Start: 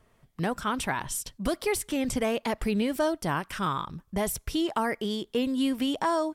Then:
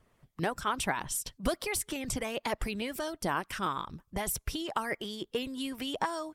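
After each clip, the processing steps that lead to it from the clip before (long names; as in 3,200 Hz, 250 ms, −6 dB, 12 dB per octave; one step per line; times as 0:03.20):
harmonic and percussive parts rebalanced harmonic −11 dB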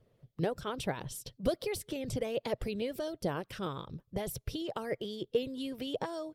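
octave-band graphic EQ 125/500/1,000/2,000/4,000/8,000 Hz +12/+12/−6/−3/+5/−6 dB
level −6.5 dB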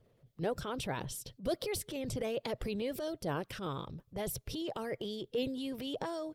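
transient designer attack −7 dB, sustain +4 dB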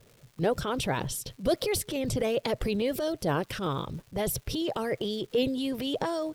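surface crackle 470 per second −55 dBFS
level +8 dB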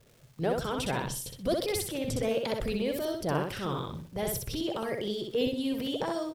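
repeating echo 63 ms, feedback 28%, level −3.5 dB
level −3.5 dB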